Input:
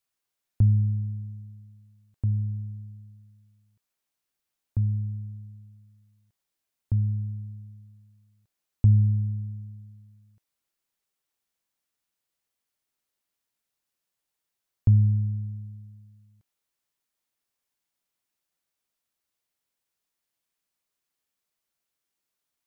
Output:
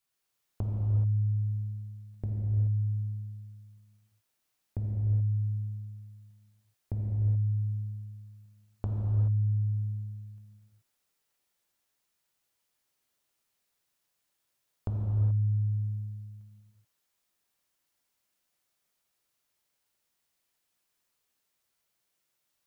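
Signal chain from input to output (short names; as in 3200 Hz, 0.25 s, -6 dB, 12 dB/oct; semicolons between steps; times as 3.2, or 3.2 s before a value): compressor 10:1, threshold -33 dBFS, peak gain reduction 18.5 dB; non-linear reverb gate 0.45 s flat, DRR -3 dB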